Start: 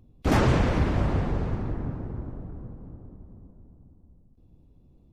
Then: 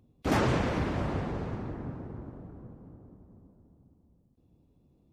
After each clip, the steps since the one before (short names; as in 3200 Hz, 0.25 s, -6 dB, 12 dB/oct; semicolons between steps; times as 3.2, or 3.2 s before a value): HPF 140 Hz 6 dB/oct; gain -3 dB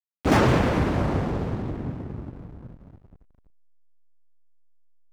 backlash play -42 dBFS; gain +7.5 dB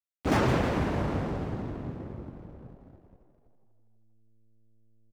frequency-shifting echo 0.161 s, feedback 54%, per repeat +110 Hz, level -11.5 dB; gain -6 dB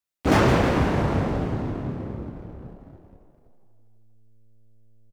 doubler 29 ms -7 dB; gain +6 dB